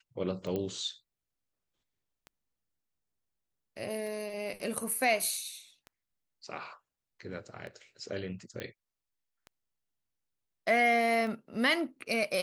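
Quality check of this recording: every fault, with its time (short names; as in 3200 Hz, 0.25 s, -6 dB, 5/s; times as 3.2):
tick 33 1/3 rpm -31 dBFS
0.56 pop -22 dBFS
8.6 pop -23 dBFS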